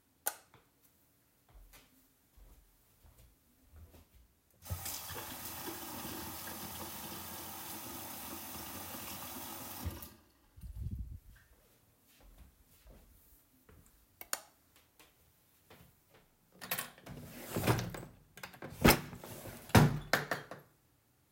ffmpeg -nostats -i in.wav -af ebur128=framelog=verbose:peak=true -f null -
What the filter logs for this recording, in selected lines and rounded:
Integrated loudness:
  I:         -37.1 LUFS
  Threshold: -50.1 LUFS
Loudness range:
  LRA:        17.5 LU
  Threshold: -60.9 LUFS
  LRA low:   -50.5 LUFS
  LRA high:  -33.0 LUFS
True peak:
  Peak:      -11.0 dBFS